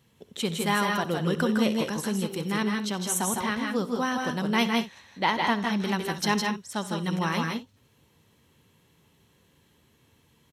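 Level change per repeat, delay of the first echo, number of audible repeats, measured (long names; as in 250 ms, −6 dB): repeats not evenly spaced, 65 ms, 3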